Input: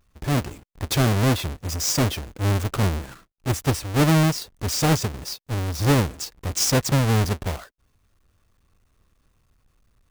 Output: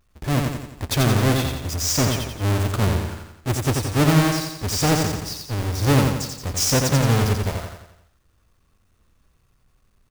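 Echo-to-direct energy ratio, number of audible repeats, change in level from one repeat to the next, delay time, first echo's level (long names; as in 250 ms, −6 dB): −2.5 dB, 6, −6.0 dB, 87 ms, −4.0 dB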